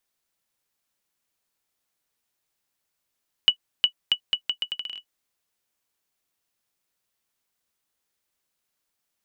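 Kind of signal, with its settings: bouncing ball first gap 0.36 s, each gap 0.77, 2950 Hz, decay 84 ms -5.5 dBFS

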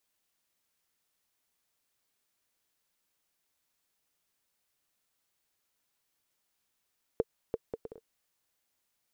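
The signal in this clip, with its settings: bouncing ball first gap 0.34 s, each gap 0.58, 452 Hz, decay 38 ms -15 dBFS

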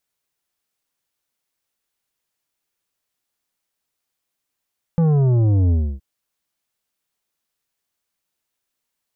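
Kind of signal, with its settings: sub drop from 170 Hz, over 1.02 s, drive 9.5 dB, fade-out 0.29 s, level -14 dB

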